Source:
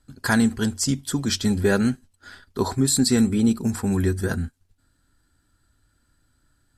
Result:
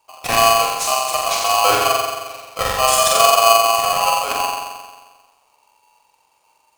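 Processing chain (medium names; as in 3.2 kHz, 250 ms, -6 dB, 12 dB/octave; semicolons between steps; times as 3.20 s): flutter echo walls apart 7.6 m, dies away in 1.4 s; polarity switched at an audio rate 910 Hz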